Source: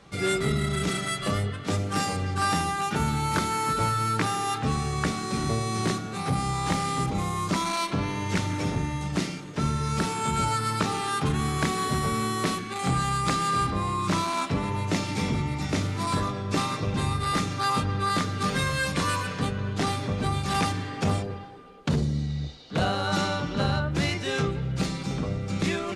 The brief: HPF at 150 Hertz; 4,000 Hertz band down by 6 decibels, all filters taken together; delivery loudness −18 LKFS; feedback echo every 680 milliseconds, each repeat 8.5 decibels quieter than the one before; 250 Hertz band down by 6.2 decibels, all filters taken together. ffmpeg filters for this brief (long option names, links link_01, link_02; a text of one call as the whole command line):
ffmpeg -i in.wav -af "highpass=150,equalizer=frequency=250:width_type=o:gain=-7.5,equalizer=frequency=4000:width_type=o:gain=-7.5,aecho=1:1:680|1360|2040|2720:0.376|0.143|0.0543|0.0206,volume=11.5dB" out.wav